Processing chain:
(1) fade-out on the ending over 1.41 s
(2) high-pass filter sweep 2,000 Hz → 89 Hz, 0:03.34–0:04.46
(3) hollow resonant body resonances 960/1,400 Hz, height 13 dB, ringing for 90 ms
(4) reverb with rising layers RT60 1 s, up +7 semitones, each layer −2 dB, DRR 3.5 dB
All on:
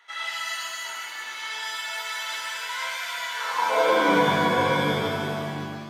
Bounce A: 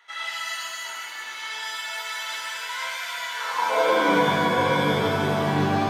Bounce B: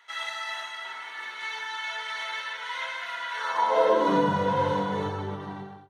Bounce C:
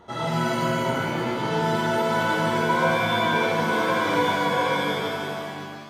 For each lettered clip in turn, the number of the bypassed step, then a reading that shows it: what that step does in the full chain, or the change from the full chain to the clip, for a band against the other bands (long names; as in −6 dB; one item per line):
1, 125 Hz band +3.5 dB
4, 8 kHz band −9.0 dB
2, 8 kHz band −5.5 dB